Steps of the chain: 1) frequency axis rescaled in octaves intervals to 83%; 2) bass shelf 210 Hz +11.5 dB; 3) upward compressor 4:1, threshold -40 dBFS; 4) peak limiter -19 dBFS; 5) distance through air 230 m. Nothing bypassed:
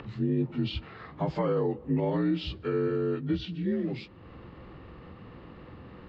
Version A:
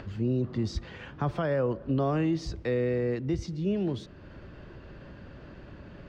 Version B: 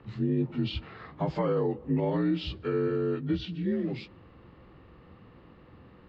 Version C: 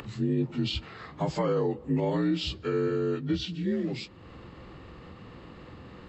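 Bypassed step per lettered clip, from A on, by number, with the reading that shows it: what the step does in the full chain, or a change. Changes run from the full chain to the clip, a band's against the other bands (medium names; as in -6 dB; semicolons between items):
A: 1, 4 kHz band -5.5 dB; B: 3, momentary loudness spread change -13 LU; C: 5, 4 kHz band +5.0 dB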